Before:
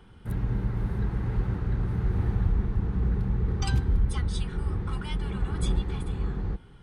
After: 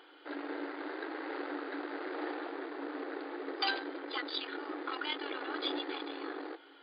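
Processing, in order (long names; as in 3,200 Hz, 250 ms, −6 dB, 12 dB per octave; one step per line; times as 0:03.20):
harmonic generator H 8 −25 dB, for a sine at −13.5 dBFS
brick-wall band-pass 270–4,900 Hz
graphic EQ with 15 bands 400 Hz −8 dB, 1,000 Hz −6 dB, 2,500 Hz −3 dB
level +6.5 dB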